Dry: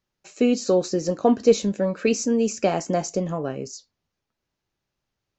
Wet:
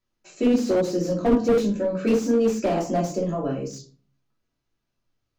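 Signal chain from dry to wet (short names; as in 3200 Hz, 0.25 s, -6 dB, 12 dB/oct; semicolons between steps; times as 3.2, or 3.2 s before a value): dynamic EQ 1800 Hz, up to -3 dB, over -38 dBFS, Q 1.5; shoebox room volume 250 m³, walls furnished, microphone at 2.9 m; slew limiter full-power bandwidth 140 Hz; gain -6 dB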